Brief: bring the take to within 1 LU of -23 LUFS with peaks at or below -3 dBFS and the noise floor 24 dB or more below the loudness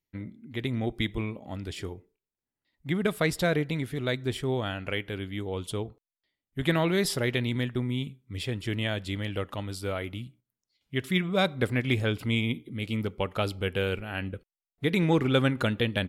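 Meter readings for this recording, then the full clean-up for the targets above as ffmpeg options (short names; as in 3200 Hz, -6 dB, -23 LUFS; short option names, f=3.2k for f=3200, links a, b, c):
loudness -29.5 LUFS; peak -11.0 dBFS; loudness target -23.0 LUFS
-> -af "volume=6.5dB"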